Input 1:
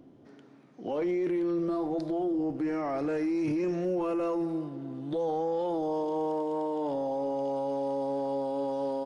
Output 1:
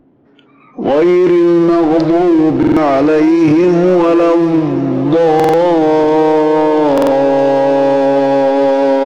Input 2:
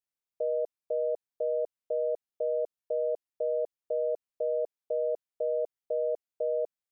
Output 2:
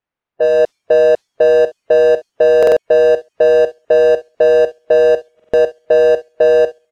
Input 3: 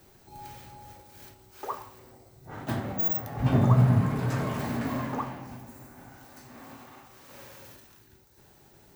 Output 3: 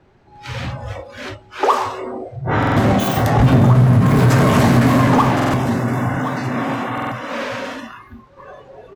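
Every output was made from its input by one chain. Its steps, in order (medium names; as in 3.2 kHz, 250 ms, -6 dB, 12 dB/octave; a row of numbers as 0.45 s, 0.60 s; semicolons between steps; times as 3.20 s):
power-law waveshaper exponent 0.7; level-controlled noise filter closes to 2 kHz, open at -20.5 dBFS; feedback delay 1067 ms, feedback 37%, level -14 dB; level rider gain up to 5 dB; spectral noise reduction 19 dB; compression 5:1, threshold -20 dBFS; buffer glitch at 2.58/5.35/6.93 s, samples 2048, times 3; peak normalisation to -3 dBFS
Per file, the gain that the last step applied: +14.5 dB, +14.5 dB, +10.5 dB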